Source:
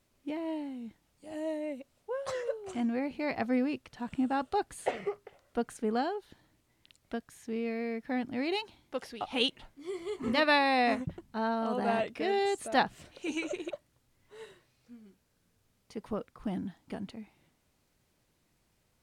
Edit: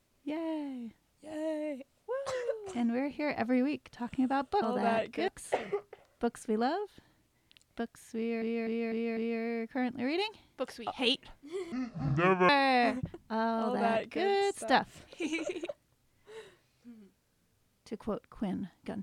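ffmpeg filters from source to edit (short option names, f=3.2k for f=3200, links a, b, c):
-filter_complex "[0:a]asplit=9[a][b][c][d][e][f][g][h][i];[a]atrim=end=4.622[j];[b]atrim=start=11.638:end=12.302[k];[c]atrim=start=4.618:end=7.762[l];[d]atrim=start=7.508:end=7.762[m];[e]atrim=start=7.508:end=7.762[n];[f]atrim=start=7.508:end=7.762[o];[g]atrim=start=7.508:end=10.064[p];[h]atrim=start=10.06:end=10.53,asetpts=PTS-STARTPTS,asetrate=26901,aresample=44100[q];[i]atrim=start=10.526[r];[j][k]acrossfade=d=0.004:c1=hsin:c2=hsin[s];[s][l]acrossfade=d=0.004:c1=hsin:c2=hsin[t];[t][m]acrossfade=d=0.004:c1=hsin:c2=hsin[u];[u][n]acrossfade=d=0.004:c1=hsin:c2=hsin[v];[v][o]acrossfade=d=0.004:c1=hsin:c2=hsin[w];[w][p]acrossfade=d=0.004:c1=hsin:c2=hsin[x];[x][q]acrossfade=d=0.004:c1=hsin:c2=hsin[y];[y][r]acrossfade=d=0.004:c1=hsin:c2=hsin"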